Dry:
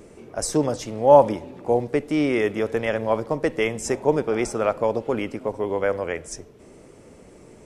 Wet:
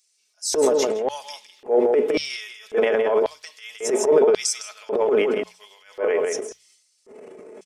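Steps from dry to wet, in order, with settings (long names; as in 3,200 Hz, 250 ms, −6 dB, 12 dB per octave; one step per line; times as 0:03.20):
comb filter 4.7 ms, depth 59%
on a send: single-tap delay 161 ms −6.5 dB
on the sum: auto-filter high-pass square 0.92 Hz 400–4,700 Hz
transient designer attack −11 dB, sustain +9 dB
noise reduction from a noise print of the clip's start 8 dB
in parallel at −2 dB: brickwall limiter −12.5 dBFS, peak gain reduction 10.5 dB
on the sum: mains-hum notches 60/120/180 Hz
level −6 dB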